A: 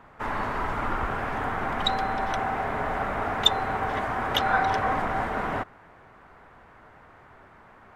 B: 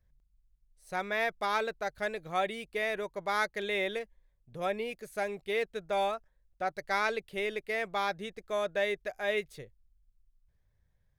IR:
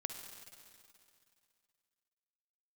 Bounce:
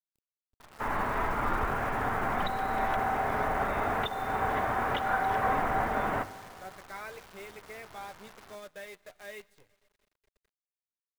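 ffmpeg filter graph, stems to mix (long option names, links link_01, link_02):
-filter_complex "[0:a]alimiter=limit=-15.5dB:level=0:latency=1:release=334,bandreject=frequency=50:width_type=h:width=6,bandreject=frequency=100:width_type=h:width=6,bandreject=frequency=150:width_type=h:width=6,bandreject=frequency=200:width_type=h:width=6,bandreject=frequency=250:width_type=h:width=6,bandreject=frequency=300:width_type=h:width=6,bandreject=frequency=350:width_type=h:width=6,adelay=600,volume=-4.5dB,asplit=2[link_01][link_02];[link_02]volume=-5dB[link_03];[1:a]flanger=delay=8.7:depth=2.5:regen=44:speed=0.5:shape=triangular,acrossover=split=450[link_04][link_05];[link_04]acompressor=threshold=-42dB:ratio=6[link_06];[link_06][link_05]amix=inputs=2:normalize=0,volume=-10dB,asplit=2[link_07][link_08];[link_08]volume=-11.5dB[link_09];[2:a]atrim=start_sample=2205[link_10];[link_03][link_09]amix=inputs=2:normalize=0[link_11];[link_11][link_10]afir=irnorm=-1:irlink=0[link_12];[link_01][link_07][link_12]amix=inputs=3:normalize=0,acrossover=split=3100[link_13][link_14];[link_14]acompressor=threshold=-58dB:ratio=4:attack=1:release=60[link_15];[link_13][link_15]amix=inputs=2:normalize=0,acrusher=bits=9:dc=4:mix=0:aa=0.000001"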